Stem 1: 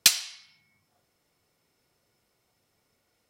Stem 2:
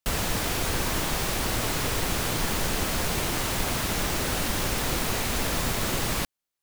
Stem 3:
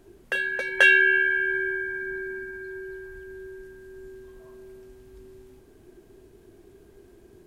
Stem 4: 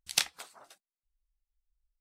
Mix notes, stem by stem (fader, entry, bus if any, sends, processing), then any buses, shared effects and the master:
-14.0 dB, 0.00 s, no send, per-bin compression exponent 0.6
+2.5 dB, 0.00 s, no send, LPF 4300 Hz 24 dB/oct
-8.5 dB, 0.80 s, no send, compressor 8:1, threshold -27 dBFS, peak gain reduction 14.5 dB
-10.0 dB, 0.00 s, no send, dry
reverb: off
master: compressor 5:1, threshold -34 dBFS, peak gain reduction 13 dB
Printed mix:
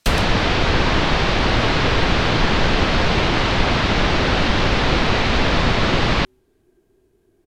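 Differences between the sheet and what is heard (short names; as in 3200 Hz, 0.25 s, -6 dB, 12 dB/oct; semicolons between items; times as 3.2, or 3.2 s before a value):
stem 2 +2.5 dB -> +11.0 dB; master: missing compressor 5:1, threshold -34 dBFS, peak gain reduction 13 dB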